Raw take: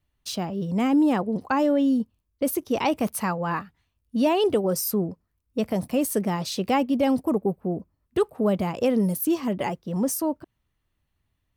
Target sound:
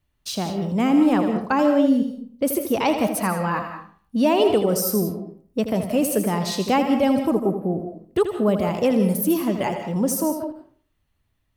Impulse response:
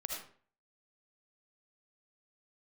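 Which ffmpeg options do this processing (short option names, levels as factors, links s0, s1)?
-filter_complex "[0:a]asplit=2[s0][s1];[1:a]atrim=start_sample=2205,adelay=81[s2];[s1][s2]afir=irnorm=-1:irlink=0,volume=0.501[s3];[s0][s3]amix=inputs=2:normalize=0,volume=1.33"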